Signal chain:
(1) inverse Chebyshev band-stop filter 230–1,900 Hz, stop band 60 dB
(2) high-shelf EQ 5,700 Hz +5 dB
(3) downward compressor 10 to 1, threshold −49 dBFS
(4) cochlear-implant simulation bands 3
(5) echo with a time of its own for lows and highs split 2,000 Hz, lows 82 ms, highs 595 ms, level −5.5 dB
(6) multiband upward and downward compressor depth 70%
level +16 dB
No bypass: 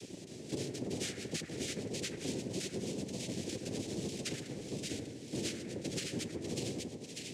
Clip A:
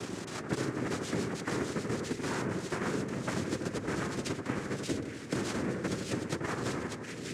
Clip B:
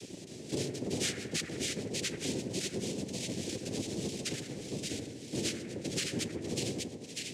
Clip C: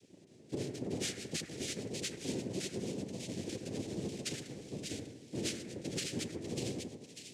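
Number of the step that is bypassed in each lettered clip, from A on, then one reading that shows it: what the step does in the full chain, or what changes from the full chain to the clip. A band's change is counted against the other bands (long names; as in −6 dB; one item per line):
1, 1 kHz band +10.5 dB
3, average gain reduction 1.5 dB
6, change in momentary loudness spread +2 LU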